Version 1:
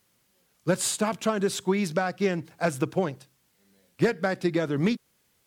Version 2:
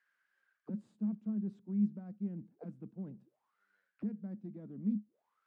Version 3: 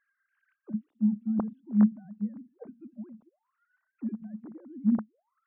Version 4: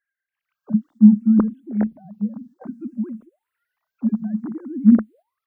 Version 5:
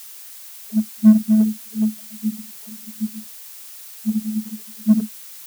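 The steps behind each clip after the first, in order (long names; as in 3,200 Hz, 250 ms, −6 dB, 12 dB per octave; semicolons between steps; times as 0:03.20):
one-sided soft clipper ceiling −18.5 dBFS; reversed playback; downward compressor, threshold −32 dBFS, peak gain reduction 13 dB; reversed playback; envelope filter 210–1,700 Hz, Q 13, down, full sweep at −36 dBFS; level +8.5 dB
three sine waves on the formant tracks; level +8.5 dB
noise gate −56 dBFS, range −6 dB; automatic gain control gain up to 14 dB; frequency shifter mixed with the dry sound +0.59 Hz; level +2.5 dB
channel vocoder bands 32, saw 216 Hz; in parallel at −6.5 dB: hard clipping −15.5 dBFS, distortion −5 dB; on the sum: background noise blue −37 dBFS; level −2 dB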